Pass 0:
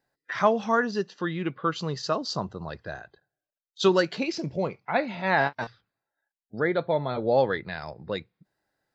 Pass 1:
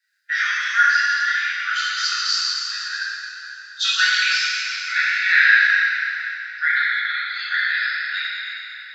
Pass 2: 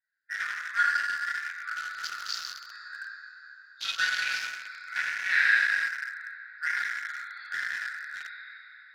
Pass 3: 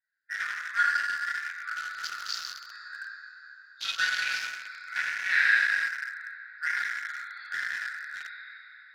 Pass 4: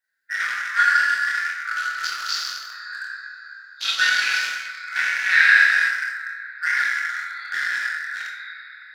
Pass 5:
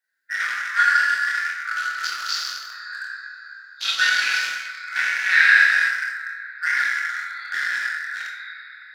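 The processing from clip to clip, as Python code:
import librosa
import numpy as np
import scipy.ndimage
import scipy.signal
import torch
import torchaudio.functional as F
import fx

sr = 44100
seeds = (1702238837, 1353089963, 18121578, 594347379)

y1 = scipy.signal.sosfilt(scipy.signal.cheby1(6, 3, 1400.0, 'highpass', fs=sr, output='sos'), x)
y1 = fx.high_shelf(y1, sr, hz=6600.0, db=-5.5)
y1 = fx.rev_plate(y1, sr, seeds[0], rt60_s=3.5, hf_ratio=0.85, predelay_ms=0, drr_db=-10.0)
y1 = F.gain(torch.from_numpy(y1), 8.0).numpy()
y2 = fx.wiener(y1, sr, points=15)
y2 = F.gain(torch.from_numpy(y2), -8.0).numpy()
y3 = y2
y4 = fx.low_shelf(y3, sr, hz=160.0, db=-7.5)
y4 = fx.doubler(y4, sr, ms=24.0, db=-5.5)
y4 = fx.rev_schroeder(y4, sr, rt60_s=0.49, comb_ms=28, drr_db=4.5)
y4 = F.gain(torch.from_numpy(y4), 6.5).numpy()
y5 = scipy.signal.sosfilt(scipy.signal.butter(4, 140.0, 'highpass', fs=sr, output='sos'), y4)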